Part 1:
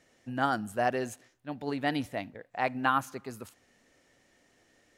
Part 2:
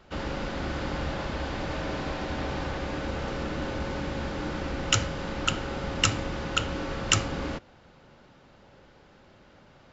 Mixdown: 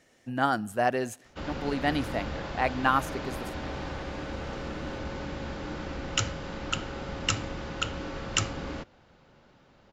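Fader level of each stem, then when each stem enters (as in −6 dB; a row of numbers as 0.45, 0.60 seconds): +2.5, −4.0 decibels; 0.00, 1.25 seconds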